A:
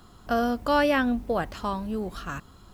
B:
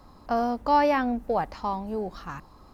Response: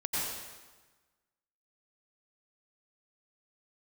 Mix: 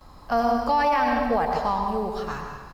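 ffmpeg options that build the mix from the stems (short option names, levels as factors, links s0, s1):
-filter_complex "[0:a]volume=0.335[s0];[1:a]adelay=9.7,volume=1.19,asplit=2[s1][s2];[s2]volume=0.562[s3];[2:a]atrim=start_sample=2205[s4];[s3][s4]afir=irnorm=-1:irlink=0[s5];[s0][s1][s5]amix=inputs=3:normalize=0,equalizer=f=270:t=o:w=1.8:g=-6,alimiter=limit=0.211:level=0:latency=1:release=26"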